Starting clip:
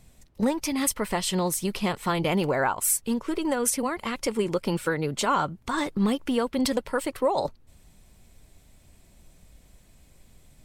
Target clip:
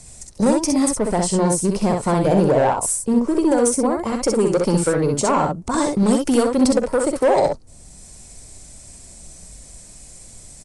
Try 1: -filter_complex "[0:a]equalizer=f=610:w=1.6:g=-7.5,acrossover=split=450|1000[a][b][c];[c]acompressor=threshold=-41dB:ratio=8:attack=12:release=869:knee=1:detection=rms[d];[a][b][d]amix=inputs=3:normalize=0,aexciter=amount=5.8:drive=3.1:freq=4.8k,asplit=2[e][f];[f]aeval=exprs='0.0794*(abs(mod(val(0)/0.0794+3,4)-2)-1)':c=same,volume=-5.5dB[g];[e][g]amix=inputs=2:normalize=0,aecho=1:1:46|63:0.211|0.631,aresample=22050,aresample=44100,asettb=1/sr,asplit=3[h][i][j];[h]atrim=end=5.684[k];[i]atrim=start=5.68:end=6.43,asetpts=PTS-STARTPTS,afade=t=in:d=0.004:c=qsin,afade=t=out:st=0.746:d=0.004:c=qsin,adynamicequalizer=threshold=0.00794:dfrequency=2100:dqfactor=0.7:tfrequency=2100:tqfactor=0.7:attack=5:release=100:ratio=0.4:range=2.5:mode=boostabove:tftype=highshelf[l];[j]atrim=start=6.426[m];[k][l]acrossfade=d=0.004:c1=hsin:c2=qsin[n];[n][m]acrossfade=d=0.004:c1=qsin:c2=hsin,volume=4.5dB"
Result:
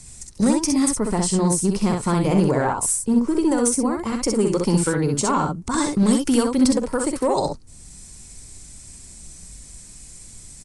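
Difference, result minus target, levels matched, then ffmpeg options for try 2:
500 Hz band -3.5 dB
-filter_complex "[0:a]equalizer=f=610:w=1.6:g=2.5,acrossover=split=450|1000[a][b][c];[c]acompressor=threshold=-41dB:ratio=8:attack=12:release=869:knee=1:detection=rms[d];[a][b][d]amix=inputs=3:normalize=0,aexciter=amount=5.8:drive=3.1:freq=4.8k,asplit=2[e][f];[f]aeval=exprs='0.0794*(abs(mod(val(0)/0.0794+3,4)-2)-1)':c=same,volume=-5.5dB[g];[e][g]amix=inputs=2:normalize=0,aecho=1:1:46|63:0.211|0.631,aresample=22050,aresample=44100,asettb=1/sr,asplit=3[h][i][j];[h]atrim=end=5.684[k];[i]atrim=start=5.68:end=6.43,asetpts=PTS-STARTPTS,afade=t=in:d=0.004:c=qsin,afade=t=out:st=0.746:d=0.004:c=qsin,adynamicequalizer=threshold=0.00794:dfrequency=2100:dqfactor=0.7:tfrequency=2100:tqfactor=0.7:attack=5:release=100:ratio=0.4:range=2.5:mode=boostabove:tftype=highshelf[l];[j]atrim=start=6.426[m];[k][l]acrossfade=d=0.004:c1=hsin:c2=qsin[n];[n][m]acrossfade=d=0.004:c1=qsin:c2=hsin,volume=4.5dB"

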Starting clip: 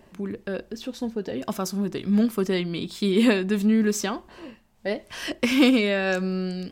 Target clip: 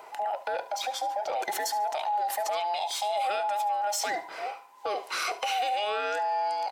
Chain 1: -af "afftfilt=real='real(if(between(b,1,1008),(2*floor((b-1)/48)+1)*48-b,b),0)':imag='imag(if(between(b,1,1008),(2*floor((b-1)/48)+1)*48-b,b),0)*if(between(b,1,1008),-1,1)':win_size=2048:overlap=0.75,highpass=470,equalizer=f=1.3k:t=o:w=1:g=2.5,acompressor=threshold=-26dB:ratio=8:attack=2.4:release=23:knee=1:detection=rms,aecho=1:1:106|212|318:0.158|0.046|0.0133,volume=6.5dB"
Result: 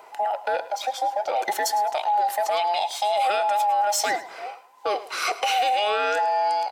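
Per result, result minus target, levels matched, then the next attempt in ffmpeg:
echo 34 ms late; compressor: peak gain reduction -6.5 dB
-af "afftfilt=real='real(if(between(b,1,1008),(2*floor((b-1)/48)+1)*48-b,b),0)':imag='imag(if(between(b,1,1008),(2*floor((b-1)/48)+1)*48-b,b),0)*if(between(b,1,1008),-1,1)':win_size=2048:overlap=0.75,highpass=470,equalizer=f=1.3k:t=o:w=1:g=2.5,acompressor=threshold=-26dB:ratio=8:attack=2.4:release=23:knee=1:detection=rms,aecho=1:1:72|144|216:0.158|0.046|0.0133,volume=6.5dB"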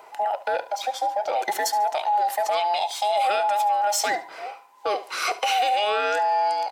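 compressor: peak gain reduction -6.5 dB
-af "afftfilt=real='real(if(between(b,1,1008),(2*floor((b-1)/48)+1)*48-b,b),0)':imag='imag(if(between(b,1,1008),(2*floor((b-1)/48)+1)*48-b,b),0)*if(between(b,1,1008),-1,1)':win_size=2048:overlap=0.75,highpass=470,equalizer=f=1.3k:t=o:w=1:g=2.5,acompressor=threshold=-33.5dB:ratio=8:attack=2.4:release=23:knee=1:detection=rms,aecho=1:1:72|144|216:0.158|0.046|0.0133,volume=6.5dB"

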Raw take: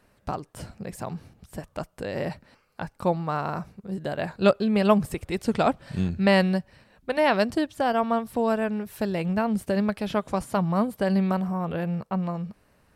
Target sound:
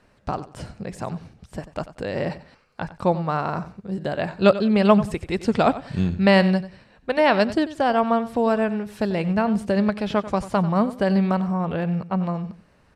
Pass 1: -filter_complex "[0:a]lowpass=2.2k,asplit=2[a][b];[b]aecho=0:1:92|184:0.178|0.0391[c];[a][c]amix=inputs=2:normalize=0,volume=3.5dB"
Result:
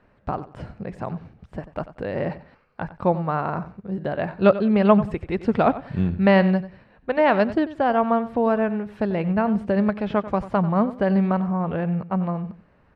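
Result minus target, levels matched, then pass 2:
8000 Hz band -18.5 dB
-filter_complex "[0:a]lowpass=6.9k,asplit=2[a][b];[b]aecho=0:1:92|184:0.178|0.0391[c];[a][c]amix=inputs=2:normalize=0,volume=3.5dB"

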